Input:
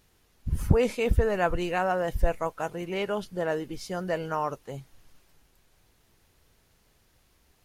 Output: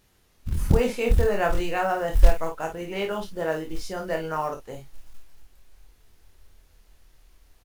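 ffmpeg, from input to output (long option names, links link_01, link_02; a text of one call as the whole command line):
ffmpeg -i in.wav -af "asubboost=boost=6:cutoff=52,acrusher=bits=7:mode=log:mix=0:aa=0.000001,aecho=1:1:25|52:0.596|0.422" out.wav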